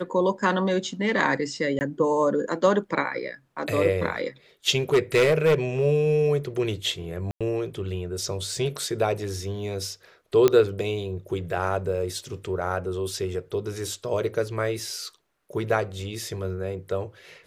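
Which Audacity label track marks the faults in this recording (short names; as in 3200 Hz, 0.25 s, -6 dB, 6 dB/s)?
1.790000	1.810000	gap 19 ms
4.930000	5.550000	clipped -14.5 dBFS
7.310000	7.410000	gap 96 ms
10.480000	10.480000	pop -7 dBFS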